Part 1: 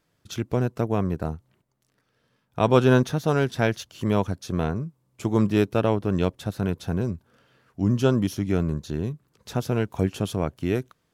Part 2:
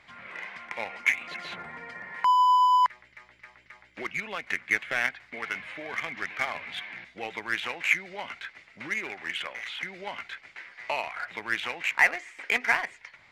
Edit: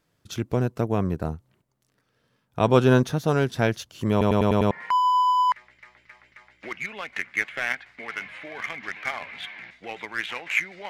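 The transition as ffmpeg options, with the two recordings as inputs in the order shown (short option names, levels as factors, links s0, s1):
-filter_complex "[0:a]apad=whole_dur=10.89,atrim=end=10.89,asplit=6[s0][s1][s2][s3][s4][s5];[s0]atrim=end=4.212[s6];[s1]atrim=start=4.108:end=4.212[s7];[s2]atrim=start=4.108:end=4.212[s8];[s3]atrim=start=4.108:end=4.212[s9];[s4]atrim=start=4.108:end=4.212[s10];[s5]atrim=start=4.108:end=4.212[s11];[1:a]atrim=start=2.048:end=8.23[s12];[s6][s7]acrossfade=d=0.004:c1=hsin:c2=hsin[s13];[s13][s8]acrossfade=d=0.004:c1=hsin:c2=hsin[s14];[s14][s9]acrossfade=d=0.004:c1=hsin:c2=hsin[s15];[s15][s10]acrossfade=d=0.004:c1=hsin:c2=hsin[s16];[s16][s11]acrossfade=d=0.004:c1=hsin:c2=hsin[s17];[s17][s12]acrossfade=d=0.004:c1=hsin:c2=hsin"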